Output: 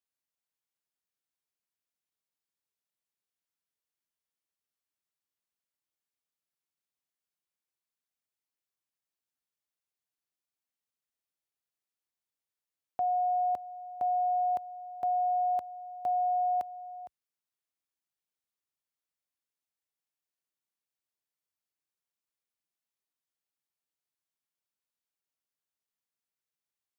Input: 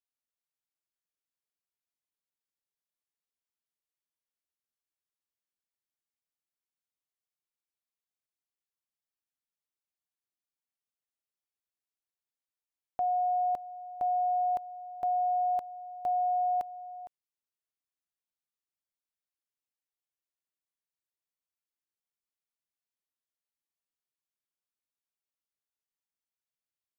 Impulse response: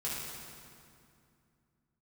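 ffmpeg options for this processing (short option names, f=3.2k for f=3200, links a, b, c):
-af "highpass=f=62:w=0.5412,highpass=f=62:w=1.3066"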